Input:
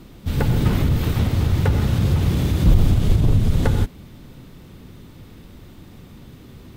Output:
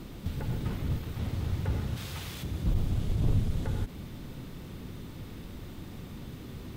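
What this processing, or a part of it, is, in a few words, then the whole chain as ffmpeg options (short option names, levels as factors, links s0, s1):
de-esser from a sidechain: -filter_complex "[0:a]asplit=2[s0][s1];[s1]highpass=f=4500:w=0.5412,highpass=f=4500:w=1.3066,apad=whole_len=298295[s2];[s0][s2]sidechaincompress=threshold=0.00178:ratio=10:attack=4.6:release=48,asplit=3[s3][s4][s5];[s3]afade=t=out:st=1.96:d=0.02[s6];[s4]tiltshelf=f=760:g=-9,afade=t=in:st=1.96:d=0.02,afade=t=out:st=2.42:d=0.02[s7];[s5]afade=t=in:st=2.42:d=0.02[s8];[s6][s7][s8]amix=inputs=3:normalize=0"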